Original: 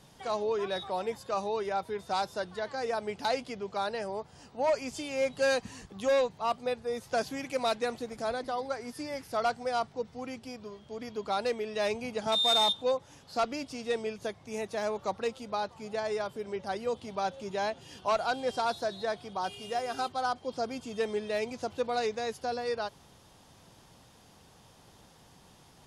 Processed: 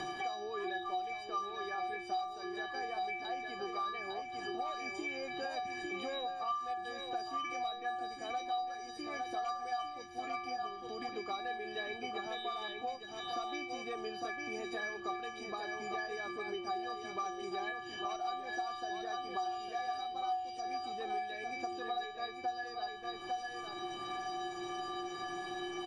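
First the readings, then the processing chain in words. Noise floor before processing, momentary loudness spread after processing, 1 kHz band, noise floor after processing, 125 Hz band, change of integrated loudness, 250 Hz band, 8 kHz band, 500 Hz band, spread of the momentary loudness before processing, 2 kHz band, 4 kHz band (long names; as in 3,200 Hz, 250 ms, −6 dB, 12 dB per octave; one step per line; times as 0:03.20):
−58 dBFS, 3 LU, −2.5 dB, −46 dBFS, −12.0 dB, −7.0 dB, −6.0 dB, −8.5 dB, −12.0 dB, 9 LU, −2.5 dB, −9.5 dB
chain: high-shelf EQ 5,800 Hz +6 dB
brickwall limiter −24.5 dBFS, peak gain reduction 7 dB
upward compression, threshold −34 dBFS
high-frequency loss of the air 190 metres
stiff-string resonator 350 Hz, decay 0.77 s, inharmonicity 0.03
single-tap delay 854 ms −7 dB
multiband upward and downward compressor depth 100%
level +18 dB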